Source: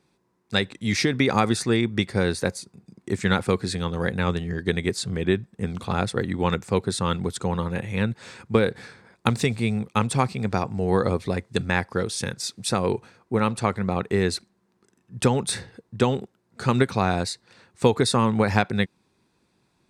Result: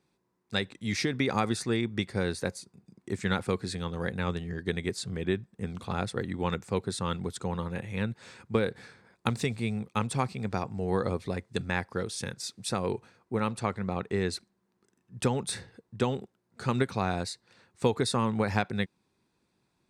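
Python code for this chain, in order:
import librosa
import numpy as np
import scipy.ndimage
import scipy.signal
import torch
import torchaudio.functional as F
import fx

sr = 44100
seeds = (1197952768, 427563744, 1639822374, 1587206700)

y = fx.lowpass(x, sr, hz=9500.0, slope=12, at=(13.61, 14.33))
y = y * librosa.db_to_amplitude(-7.0)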